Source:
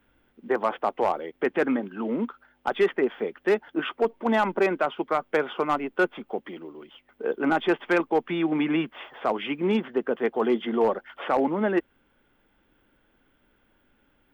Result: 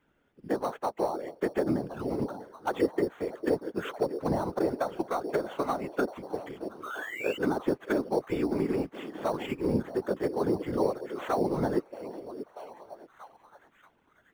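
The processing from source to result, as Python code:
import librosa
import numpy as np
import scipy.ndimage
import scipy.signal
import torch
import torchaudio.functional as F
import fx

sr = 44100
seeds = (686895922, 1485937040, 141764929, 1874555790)

p1 = fx.env_lowpass_down(x, sr, base_hz=710.0, full_db=-18.5)
p2 = p1 + fx.echo_stepped(p1, sr, ms=633, hz=430.0, octaves=0.7, feedback_pct=70, wet_db=-9.5, dry=0)
p3 = fx.spec_paint(p2, sr, seeds[0], shape='rise', start_s=6.83, length_s=0.55, low_hz=1200.0, high_hz=3000.0, level_db=-33.0)
p4 = fx.sample_hold(p3, sr, seeds[1], rate_hz=5000.0, jitter_pct=0)
p5 = p3 + (p4 * librosa.db_to_amplitude(-10.0))
p6 = scipy.signal.sosfilt(scipy.signal.butter(2, 55.0, 'highpass', fs=sr, output='sos'), p5)
p7 = fx.whisperise(p6, sr, seeds[2])
y = p7 * librosa.db_to_amplitude(-6.5)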